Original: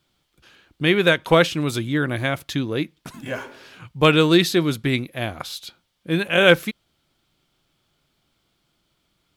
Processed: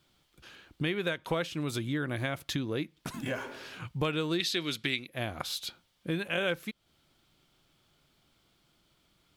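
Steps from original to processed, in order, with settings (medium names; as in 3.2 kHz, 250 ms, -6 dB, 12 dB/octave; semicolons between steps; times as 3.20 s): 4.40–5.07 s: frequency weighting D; compression 4:1, threshold -31 dBFS, peak gain reduction 18.5 dB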